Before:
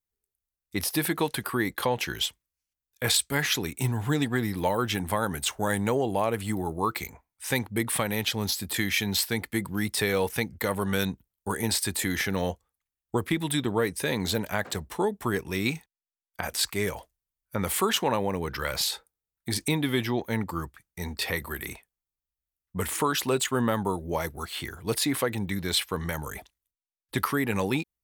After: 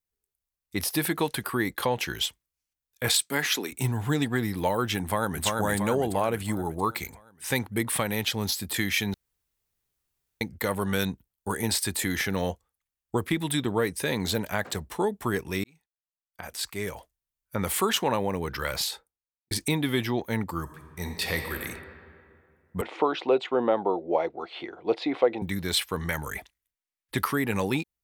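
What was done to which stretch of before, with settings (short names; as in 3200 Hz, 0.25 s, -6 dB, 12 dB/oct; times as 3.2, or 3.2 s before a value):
3.08–3.71 HPF 120 Hz -> 260 Hz 24 dB/oct
5.02–5.44 echo throw 0.34 s, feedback 55%, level -2.5 dB
9.14–10.41 room tone
15.64–17.57 fade in
18.72–19.51 studio fade out
20.61–21.58 reverb throw, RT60 2.3 s, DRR 4.5 dB
22.81–25.42 speaker cabinet 310–3400 Hz, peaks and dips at 340 Hz +7 dB, 510 Hz +7 dB, 730 Hz +9 dB, 1200 Hz -3 dB, 1700 Hz -9 dB, 3000 Hz -4 dB
26.09–27.16 bell 2000 Hz +7 dB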